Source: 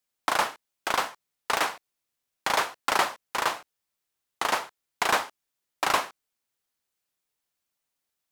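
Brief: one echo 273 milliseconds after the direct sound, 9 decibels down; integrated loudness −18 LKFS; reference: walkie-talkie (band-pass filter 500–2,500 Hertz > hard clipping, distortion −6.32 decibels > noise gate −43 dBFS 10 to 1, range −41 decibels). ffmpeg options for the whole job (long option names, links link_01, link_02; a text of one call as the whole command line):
ffmpeg -i in.wav -af "highpass=500,lowpass=2500,aecho=1:1:273:0.355,asoftclip=type=hard:threshold=-26.5dB,agate=range=-41dB:threshold=-43dB:ratio=10,volume=15.5dB" out.wav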